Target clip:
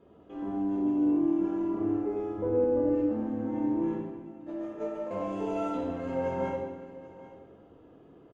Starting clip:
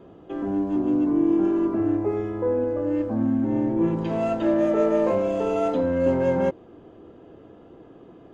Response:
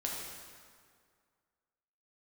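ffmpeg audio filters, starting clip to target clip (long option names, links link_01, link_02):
-filter_complex "[0:a]asettb=1/sr,asplit=3[link_01][link_02][link_03];[link_01]atrim=end=2.384[link_04];[link_02]atrim=start=2.38:end=2.95,asetpts=PTS-STARTPTS,afade=type=in:duration=0.004:curve=qsin,afade=type=out:start_time=0.566:duration=0.004:curve=qsin,lowshelf=frequency=470:gain=9[link_05];[link_03]atrim=start=2.946[link_06];[link_04][link_05]acrossfade=duration=0.004:curve1=hsin:curve2=qsin[link_07];[link_07][link_06]acrossfade=duration=0.004:curve1=qsin:curve2=hsin,asettb=1/sr,asplit=3[link_08][link_09][link_10];[link_08]atrim=end=3.954[link_11];[link_09]atrim=start=3.95:end=5.11,asetpts=PTS-STARTPTS,afade=type=in:duration=0.004:curve=qsin,afade=type=out:start_time=1.156:duration=0.004:curve=qsin,agate=range=-28dB:threshold=-18dB:ratio=16:detection=peak[link_12];[link_10]atrim=start=5.106[link_13];[link_11][link_12]acrossfade=duration=0.004:curve1=hsin:curve2=qsin[link_14];[link_14][link_13]acrossfade=duration=0.004:curve1=qsin:curve2=hsin,aecho=1:1:788:0.133[link_15];[1:a]atrim=start_sample=2205,asetrate=66150,aresample=44100[link_16];[link_15][link_16]afir=irnorm=-1:irlink=0,volume=-7dB"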